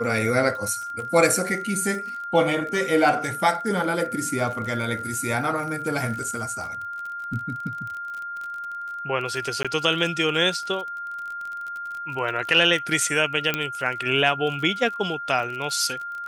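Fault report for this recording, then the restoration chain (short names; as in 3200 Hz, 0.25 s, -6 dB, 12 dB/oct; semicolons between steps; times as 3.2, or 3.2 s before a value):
crackle 37/s -31 dBFS
tone 1400 Hz -30 dBFS
9.63–9.65 gap 16 ms
13.54 pop -8 dBFS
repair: de-click; notch 1400 Hz, Q 30; interpolate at 9.63, 16 ms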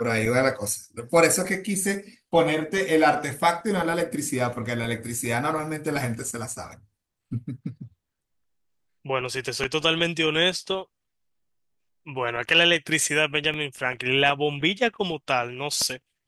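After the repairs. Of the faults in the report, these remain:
13.54 pop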